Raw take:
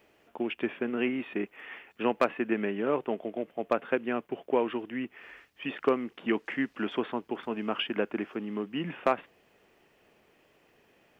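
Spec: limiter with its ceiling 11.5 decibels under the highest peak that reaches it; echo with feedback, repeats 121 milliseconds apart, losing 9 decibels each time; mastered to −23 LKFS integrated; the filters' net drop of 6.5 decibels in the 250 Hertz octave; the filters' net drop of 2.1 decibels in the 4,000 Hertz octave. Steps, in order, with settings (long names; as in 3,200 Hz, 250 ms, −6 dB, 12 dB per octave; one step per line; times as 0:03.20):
parametric band 250 Hz −8.5 dB
parametric band 4,000 Hz −3.5 dB
brickwall limiter −25 dBFS
repeating echo 121 ms, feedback 35%, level −9 dB
level +15 dB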